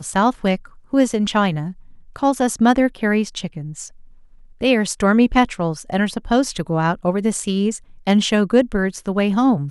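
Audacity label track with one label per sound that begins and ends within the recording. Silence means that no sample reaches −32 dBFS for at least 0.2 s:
0.930000	1.720000	sound
2.160000	3.880000	sound
4.610000	7.780000	sound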